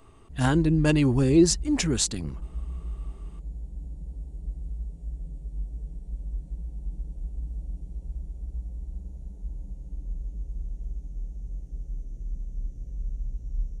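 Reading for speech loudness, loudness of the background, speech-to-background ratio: −22.5 LKFS, −38.5 LKFS, 16.0 dB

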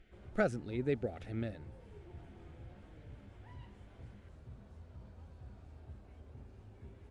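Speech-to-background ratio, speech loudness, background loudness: 17.0 dB, −37.5 LKFS, −54.5 LKFS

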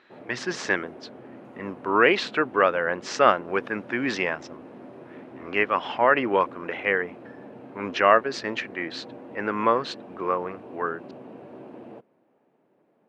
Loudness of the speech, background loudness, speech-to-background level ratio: −24.5 LKFS, −44.0 LKFS, 19.5 dB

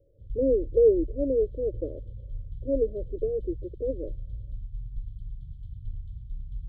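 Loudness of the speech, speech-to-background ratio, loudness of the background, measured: −27.0 LKFS, 14.0 dB, −41.0 LKFS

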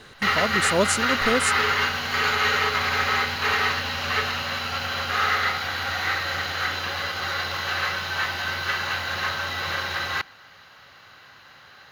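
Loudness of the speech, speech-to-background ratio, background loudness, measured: −25.5 LKFS, −2.0 dB, −23.5 LKFS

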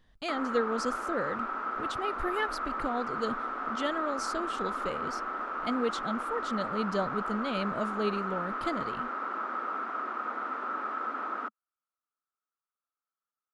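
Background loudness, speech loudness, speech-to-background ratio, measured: −34.5 LKFS, −35.0 LKFS, −0.5 dB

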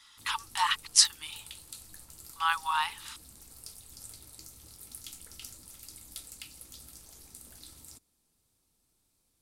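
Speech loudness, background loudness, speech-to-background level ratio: −27.0 LKFS, −47.0 LKFS, 20.0 dB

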